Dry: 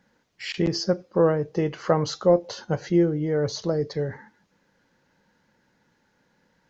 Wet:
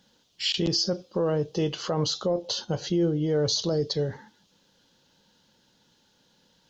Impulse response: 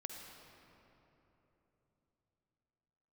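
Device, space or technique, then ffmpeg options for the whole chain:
over-bright horn tweeter: -filter_complex "[0:a]highshelf=f=2600:t=q:w=3:g=7.5,alimiter=limit=0.15:level=0:latency=1:release=33,asplit=3[s0][s1][s2];[s0]afade=t=out:st=1.87:d=0.02[s3];[s1]adynamicequalizer=threshold=0.00891:dfrequency=2300:dqfactor=0.7:tfrequency=2300:tqfactor=0.7:attack=5:release=100:ratio=0.375:range=2:mode=cutabove:tftype=highshelf,afade=t=in:st=1.87:d=0.02,afade=t=out:st=3.28:d=0.02[s4];[s2]afade=t=in:st=3.28:d=0.02[s5];[s3][s4][s5]amix=inputs=3:normalize=0"

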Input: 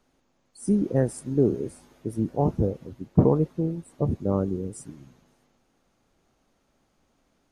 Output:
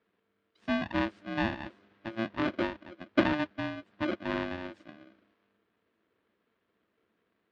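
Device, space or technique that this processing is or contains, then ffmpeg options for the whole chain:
ring modulator pedal into a guitar cabinet: -af "aeval=exprs='val(0)*sgn(sin(2*PI*450*n/s))':c=same,highpass=85,equalizer=f=150:t=q:w=4:g=-8,equalizer=f=210:t=q:w=4:g=5,equalizer=f=330:t=q:w=4:g=7,equalizer=f=780:t=q:w=4:g=-9,equalizer=f=1700:t=q:w=4:g=3,lowpass=f=3600:w=0.5412,lowpass=f=3600:w=1.3066,volume=0.398"

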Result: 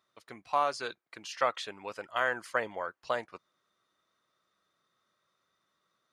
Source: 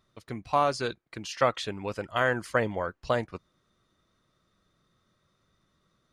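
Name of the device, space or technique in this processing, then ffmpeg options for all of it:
filter by subtraction: -filter_complex "[0:a]asplit=2[s0][s1];[s1]lowpass=980,volume=-1[s2];[s0][s2]amix=inputs=2:normalize=0,volume=0.596"

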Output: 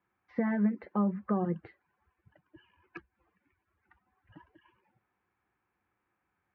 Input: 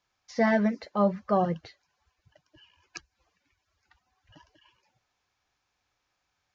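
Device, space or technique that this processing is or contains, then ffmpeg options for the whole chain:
bass amplifier: -af "acompressor=threshold=0.0316:ratio=5,highpass=62,equalizer=f=200:t=q:w=4:g=8,equalizer=f=350:t=q:w=4:g=8,equalizer=f=630:t=q:w=4:g=-7,lowpass=f=2100:w=0.5412,lowpass=f=2100:w=1.3066"

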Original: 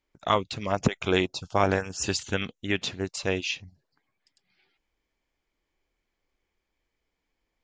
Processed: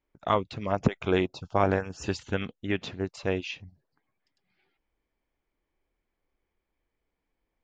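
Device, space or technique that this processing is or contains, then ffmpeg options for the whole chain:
through cloth: -af "lowpass=7400,highshelf=f=2900:g=-13"

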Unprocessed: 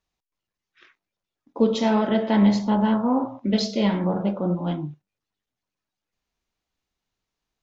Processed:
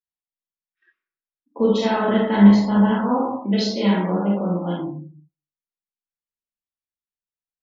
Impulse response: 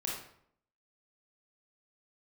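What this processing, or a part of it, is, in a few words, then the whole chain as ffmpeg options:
bathroom: -filter_complex "[0:a]asplit=3[s0][s1][s2];[s0]afade=t=out:st=2.91:d=0.02[s3];[s1]highpass=200,afade=t=in:st=2.91:d=0.02,afade=t=out:st=4.79:d=0.02[s4];[s2]afade=t=in:st=4.79:d=0.02[s5];[s3][s4][s5]amix=inputs=3:normalize=0[s6];[1:a]atrim=start_sample=2205[s7];[s6][s7]afir=irnorm=-1:irlink=0,afftdn=nr=26:nf=-41,equalizer=f=1600:w=2.2:g=4.5"

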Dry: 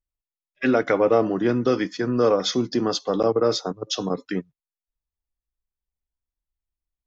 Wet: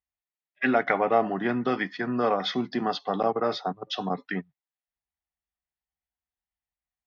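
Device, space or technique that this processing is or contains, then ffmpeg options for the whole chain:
guitar cabinet: -af "highpass=80,equalizer=f=110:t=q:w=4:g=-10,equalizer=f=320:t=q:w=4:g=-8,equalizer=f=500:t=q:w=4:g=-9,equalizer=f=750:t=q:w=4:g=9,equalizer=f=1900:t=q:w=4:g=7,lowpass=f=3900:w=0.5412,lowpass=f=3900:w=1.3066,volume=0.794"

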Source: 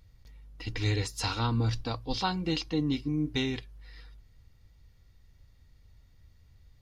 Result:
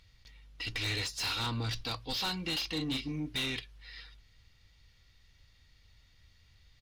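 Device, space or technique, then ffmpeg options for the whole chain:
saturation between pre-emphasis and de-emphasis: -filter_complex "[0:a]asplit=3[s0][s1][s2];[s0]afade=t=out:st=2.61:d=0.02[s3];[s1]asplit=2[s4][s5];[s5]adelay=38,volume=0.473[s6];[s4][s6]amix=inputs=2:normalize=0,afade=t=in:st=2.61:d=0.02,afade=t=out:st=3.19:d=0.02[s7];[s2]afade=t=in:st=3.19:d=0.02[s8];[s3][s7][s8]amix=inputs=3:normalize=0,equalizer=f=3200:t=o:w=2.7:g=15,highshelf=f=5200:g=8.5,asoftclip=type=tanh:threshold=0.075,highshelf=f=5200:g=-8.5,volume=0.531"

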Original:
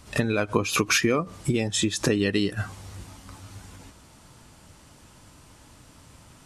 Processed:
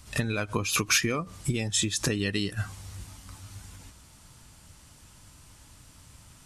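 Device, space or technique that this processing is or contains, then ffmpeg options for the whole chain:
smiley-face EQ: -af "lowshelf=f=140:g=4.5,equalizer=f=410:t=o:w=2.5:g=-6,highshelf=f=5400:g=5.5,volume=0.75"

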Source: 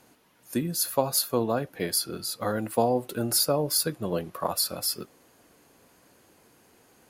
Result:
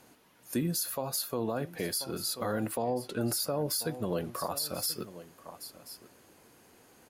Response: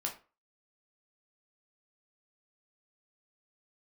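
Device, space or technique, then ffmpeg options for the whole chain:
stacked limiters: -filter_complex "[0:a]asettb=1/sr,asplit=3[s0][s1][s2];[s0]atrim=end=2.764[s3];[s1]atrim=start=2.76:end=3.21,asetpts=PTS-STARTPTS,afade=t=in:d=0.004:c=qsin,afade=t=out:st=0.446:d=0.004:c=qsin,lowpass=6600[s4];[s2]atrim=start=3.206[s5];[s3][s4]acrossfade=d=0.004:c1=hsin:c2=qsin[s6];[s6][s5]acrossfade=d=0.004:c1=qsin:c2=hsin,aecho=1:1:1034:0.119,alimiter=limit=0.2:level=0:latency=1:release=448,alimiter=limit=0.126:level=0:latency=1:release=118,alimiter=limit=0.0841:level=0:latency=1:release=52"

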